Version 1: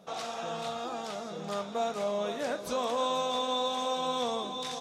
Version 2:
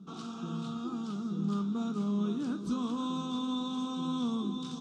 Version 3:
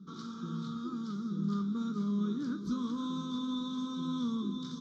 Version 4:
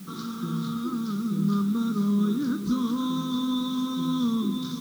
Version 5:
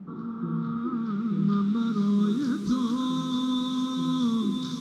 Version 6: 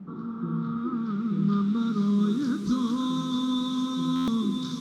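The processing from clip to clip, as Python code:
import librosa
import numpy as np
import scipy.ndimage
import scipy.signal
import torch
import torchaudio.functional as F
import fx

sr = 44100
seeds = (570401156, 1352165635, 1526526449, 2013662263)

y1 = fx.curve_eq(x, sr, hz=(110.0, 190.0, 370.0, 570.0, 1300.0, 1900.0, 3000.0, 8300.0, 13000.0), db=(0, 13, 4, -24, -2, -24, -8, -10, -27))
y2 = fx.fixed_phaser(y1, sr, hz=2700.0, stages=6)
y3 = fx.quant_dither(y2, sr, seeds[0], bits=10, dither='triangular')
y3 = F.gain(torch.from_numpy(y3), 8.5).numpy()
y4 = fx.filter_sweep_lowpass(y3, sr, from_hz=860.0, to_hz=7500.0, start_s=0.2, end_s=2.48, q=0.89)
y5 = fx.buffer_glitch(y4, sr, at_s=(4.15,), block=512, repeats=10)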